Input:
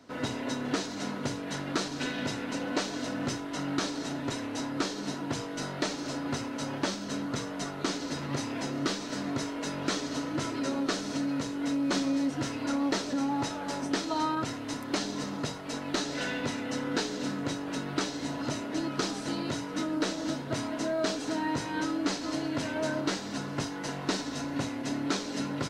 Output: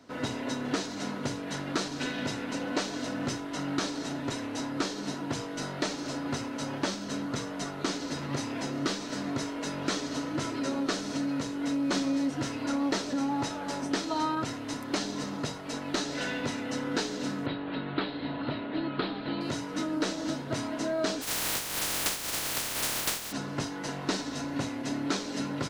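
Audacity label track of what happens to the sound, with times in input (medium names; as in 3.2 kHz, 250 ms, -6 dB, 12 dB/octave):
17.460000	19.410000	steep low-pass 4.2 kHz 72 dB/octave
21.210000	23.310000	spectral contrast reduction exponent 0.12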